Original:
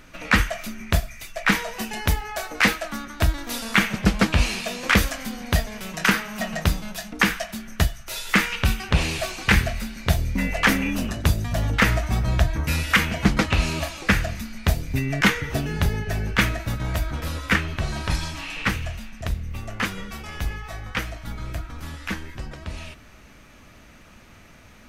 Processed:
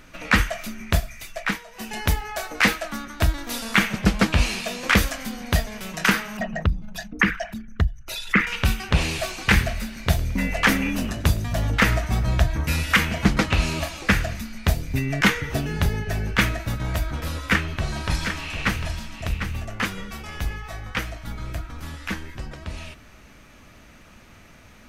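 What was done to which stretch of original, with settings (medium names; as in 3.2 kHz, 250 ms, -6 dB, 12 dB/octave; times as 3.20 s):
1.34–1.96 s: dip -13 dB, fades 0.25 s
6.37–8.47 s: resonances exaggerated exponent 2
9.48–14.37 s: modulated delay 108 ms, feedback 64%, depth 130 cents, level -23 dB
17.45–19.65 s: delay 750 ms -8 dB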